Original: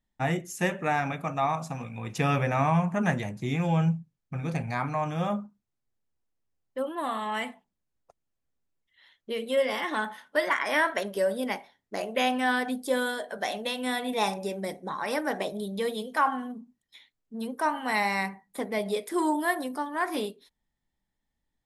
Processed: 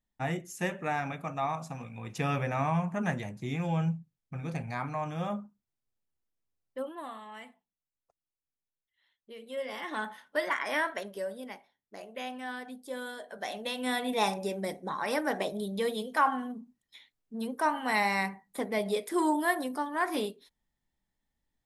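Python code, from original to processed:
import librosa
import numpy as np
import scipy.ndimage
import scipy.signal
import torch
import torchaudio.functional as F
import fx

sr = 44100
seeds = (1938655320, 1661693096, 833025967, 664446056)

y = fx.gain(x, sr, db=fx.line((6.8, -5.0), (7.27, -15.0), (9.35, -15.0), (10.03, -4.5), (10.72, -4.5), (11.55, -13.0), (12.82, -13.0), (13.94, -1.0)))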